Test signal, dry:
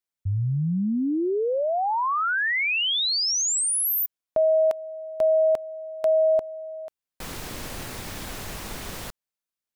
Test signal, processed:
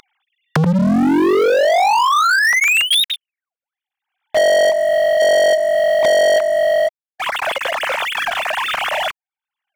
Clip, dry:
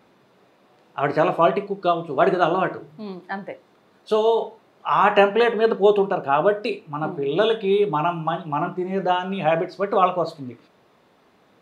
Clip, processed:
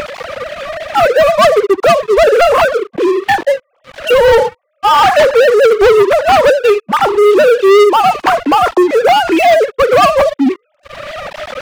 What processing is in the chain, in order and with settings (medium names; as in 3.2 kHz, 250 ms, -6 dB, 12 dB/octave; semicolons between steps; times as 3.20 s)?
formants replaced by sine waves; upward compressor, threshold -18 dBFS; waveshaping leveller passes 5